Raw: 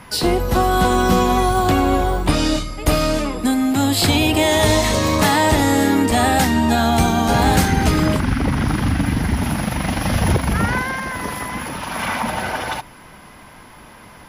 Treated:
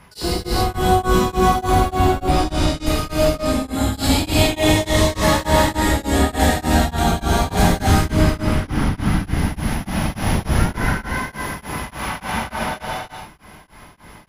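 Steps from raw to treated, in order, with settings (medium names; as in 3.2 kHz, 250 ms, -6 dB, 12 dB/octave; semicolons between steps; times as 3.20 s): octave divider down 2 oct, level -2 dB; gated-style reverb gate 480 ms flat, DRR -7.5 dB; tremolo of two beating tones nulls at 3.4 Hz; trim -7.5 dB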